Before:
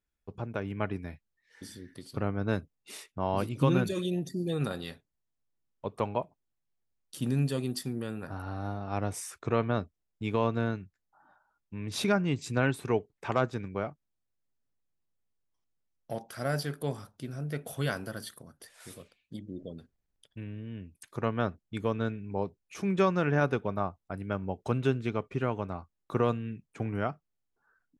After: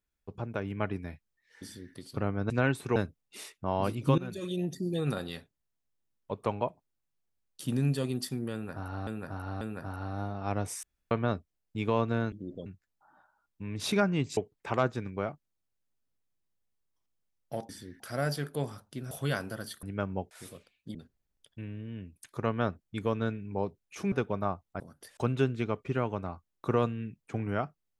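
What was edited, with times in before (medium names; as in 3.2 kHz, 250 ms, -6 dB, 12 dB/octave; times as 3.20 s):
1.63–1.94 s: copy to 16.27 s
3.72–4.20 s: fade in, from -19 dB
8.07–8.61 s: loop, 3 plays
9.29–9.57 s: room tone
12.49–12.95 s: move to 2.50 s
17.38–17.67 s: delete
18.39–18.76 s: swap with 24.15–24.63 s
19.40–19.74 s: move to 10.78 s
22.91–23.47 s: delete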